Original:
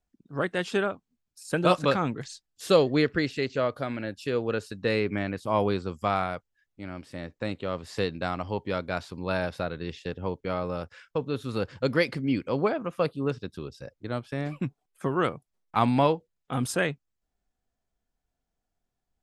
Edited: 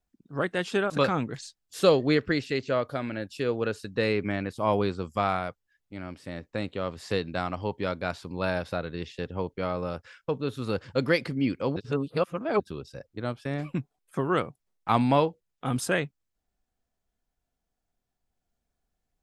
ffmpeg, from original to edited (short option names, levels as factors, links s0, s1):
-filter_complex "[0:a]asplit=4[s0][s1][s2][s3];[s0]atrim=end=0.902[s4];[s1]atrim=start=1.768:end=12.632[s5];[s2]atrim=start=12.628:end=13.472,asetpts=PTS-STARTPTS,areverse[s6];[s3]atrim=start=13.468[s7];[s4][s5]acrossfade=d=0.004:c1=hsin:c2=hsin[s8];[s8][s6]acrossfade=d=0.004:c1=hsin:c2=hsin[s9];[s9][s7]acrossfade=d=0.004:c1=hsin:c2=hsin"